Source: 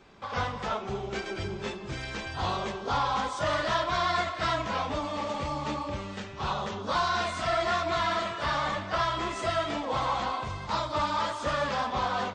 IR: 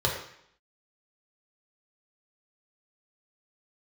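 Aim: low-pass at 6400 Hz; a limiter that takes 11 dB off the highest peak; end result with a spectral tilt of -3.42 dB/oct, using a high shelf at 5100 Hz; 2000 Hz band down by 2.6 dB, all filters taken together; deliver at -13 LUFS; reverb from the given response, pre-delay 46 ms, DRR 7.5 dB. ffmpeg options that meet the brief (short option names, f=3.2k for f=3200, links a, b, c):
-filter_complex "[0:a]lowpass=6.4k,equalizer=f=2k:t=o:g=-4,highshelf=f=5.1k:g=4,alimiter=level_in=4dB:limit=-24dB:level=0:latency=1,volume=-4dB,asplit=2[a][b];[1:a]atrim=start_sample=2205,adelay=46[c];[b][c]afir=irnorm=-1:irlink=0,volume=-19dB[d];[a][d]amix=inputs=2:normalize=0,volume=22.5dB"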